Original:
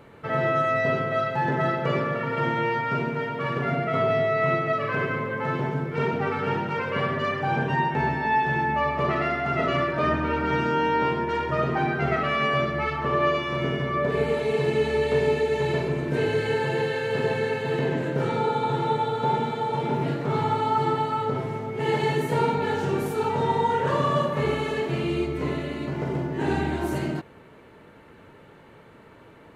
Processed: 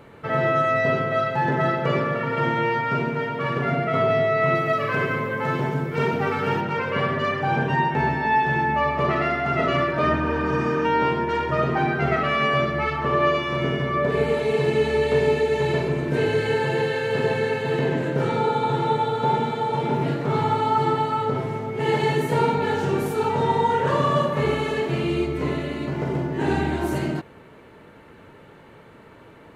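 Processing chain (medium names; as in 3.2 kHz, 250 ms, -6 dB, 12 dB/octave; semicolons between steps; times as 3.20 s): 4.55–6.61 s: treble shelf 6.8 kHz +11.5 dB; 10.26–10.83 s: spectral replace 710–4300 Hz before; trim +2.5 dB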